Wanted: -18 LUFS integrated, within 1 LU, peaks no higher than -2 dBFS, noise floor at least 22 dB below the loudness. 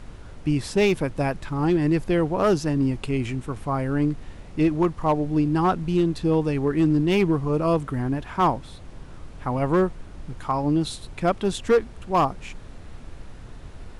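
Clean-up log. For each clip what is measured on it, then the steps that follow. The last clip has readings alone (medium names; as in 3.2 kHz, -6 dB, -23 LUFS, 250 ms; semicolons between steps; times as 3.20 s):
clipped samples 0.7%; clipping level -13.0 dBFS; noise floor -42 dBFS; noise floor target -46 dBFS; loudness -23.5 LUFS; peak level -13.0 dBFS; loudness target -18.0 LUFS
-> clip repair -13 dBFS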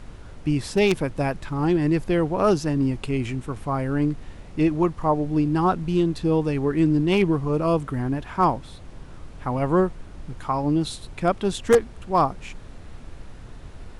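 clipped samples 0.0%; noise floor -42 dBFS; noise floor target -45 dBFS
-> noise print and reduce 6 dB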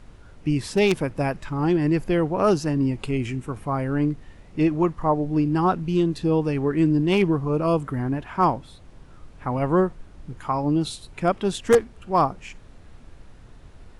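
noise floor -47 dBFS; loudness -23.0 LUFS; peak level -4.0 dBFS; loudness target -18.0 LUFS
-> trim +5 dB; peak limiter -2 dBFS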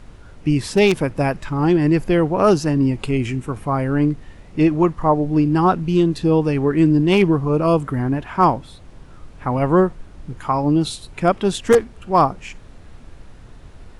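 loudness -18.5 LUFS; peak level -2.0 dBFS; noise floor -42 dBFS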